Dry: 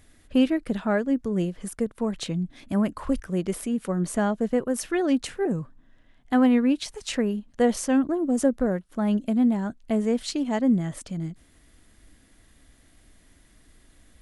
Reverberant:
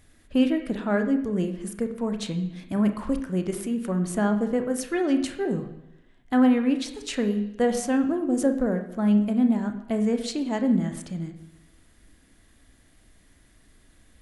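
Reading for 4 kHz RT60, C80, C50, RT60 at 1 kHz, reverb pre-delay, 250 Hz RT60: 0.90 s, 12.5 dB, 9.5 dB, 0.90 s, 30 ms, 0.90 s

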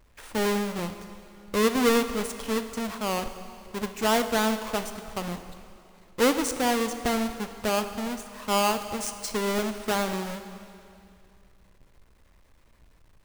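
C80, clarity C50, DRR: 11.0 dB, 10.0 dB, 8.5 dB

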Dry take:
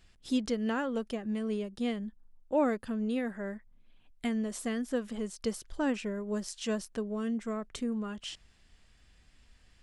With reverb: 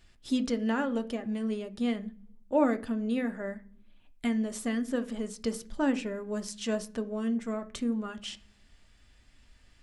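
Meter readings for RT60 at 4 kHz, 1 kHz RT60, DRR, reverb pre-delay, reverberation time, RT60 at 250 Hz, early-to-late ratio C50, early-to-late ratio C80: 0.55 s, 0.40 s, 7.0 dB, 3 ms, 0.45 s, 0.75 s, 18.0 dB, 23.5 dB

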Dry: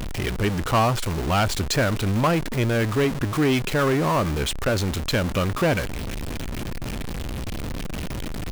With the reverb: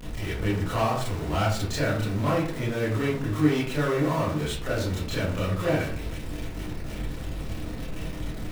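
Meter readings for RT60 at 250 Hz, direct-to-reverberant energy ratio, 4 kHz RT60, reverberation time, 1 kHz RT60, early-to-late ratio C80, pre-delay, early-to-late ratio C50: 0.60 s, −9.0 dB, 0.30 s, 0.50 s, 0.50 s, 7.5 dB, 23 ms, 3.0 dB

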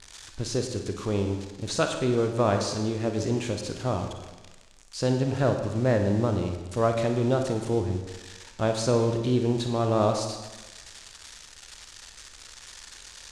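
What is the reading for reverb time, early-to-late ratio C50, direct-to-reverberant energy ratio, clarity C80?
1.2 s, 6.0 dB, 4.5 dB, 8.0 dB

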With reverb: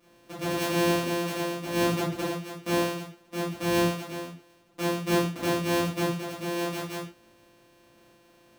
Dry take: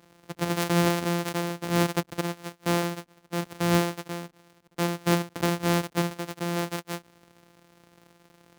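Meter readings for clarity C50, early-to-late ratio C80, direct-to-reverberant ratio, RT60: 4.5 dB, 9.0 dB, −10.5 dB, non-exponential decay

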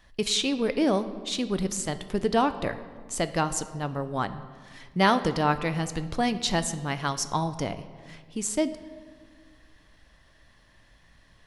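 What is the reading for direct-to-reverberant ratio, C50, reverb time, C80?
11.0 dB, 13.0 dB, 1.7 s, 14.5 dB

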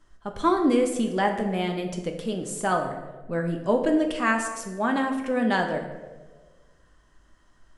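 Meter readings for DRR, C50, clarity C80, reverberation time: 3.0 dB, 7.0 dB, 9.0 dB, 1.4 s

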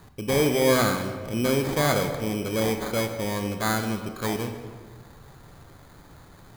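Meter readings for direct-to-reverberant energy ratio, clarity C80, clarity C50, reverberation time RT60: 6.0 dB, 9.0 dB, 7.5 dB, 1.6 s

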